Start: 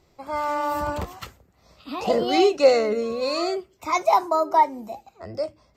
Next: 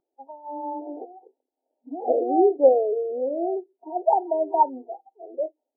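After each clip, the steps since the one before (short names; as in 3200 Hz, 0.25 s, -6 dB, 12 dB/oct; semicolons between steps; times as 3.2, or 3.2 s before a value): FFT band-pass 240–940 Hz; spectral noise reduction 19 dB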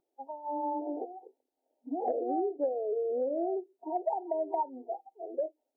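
compressor 10:1, threshold -28 dBFS, peak gain reduction 18 dB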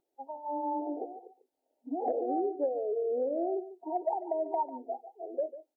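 outdoor echo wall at 25 m, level -14 dB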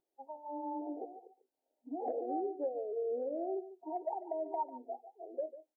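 doubler 13 ms -12 dB; gain -6 dB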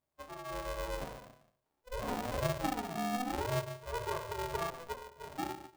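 shoebox room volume 51 m³, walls mixed, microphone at 0.76 m; polarity switched at an audio rate 250 Hz; gain -3.5 dB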